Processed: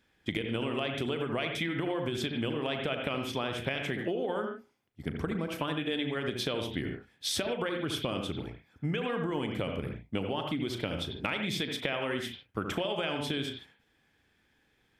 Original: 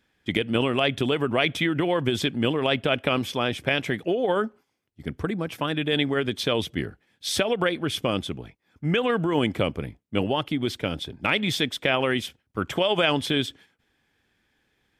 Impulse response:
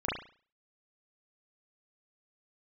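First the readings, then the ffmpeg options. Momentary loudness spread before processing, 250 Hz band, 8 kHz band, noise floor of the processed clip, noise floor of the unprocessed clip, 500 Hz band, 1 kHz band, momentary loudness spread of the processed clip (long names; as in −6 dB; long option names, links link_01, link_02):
9 LU, −7.5 dB, −5.5 dB, −71 dBFS, −72 dBFS, −8.5 dB, −8.5 dB, 6 LU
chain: -filter_complex "[0:a]asplit=2[link_01][link_02];[1:a]atrim=start_sample=2205,afade=type=out:start_time=0.18:duration=0.01,atrim=end_sample=8379,adelay=37[link_03];[link_02][link_03]afir=irnorm=-1:irlink=0,volume=-12.5dB[link_04];[link_01][link_04]amix=inputs=2:normalize=0,acompressor=threshold=-27dB:ratio=10,volume=-1.5dB"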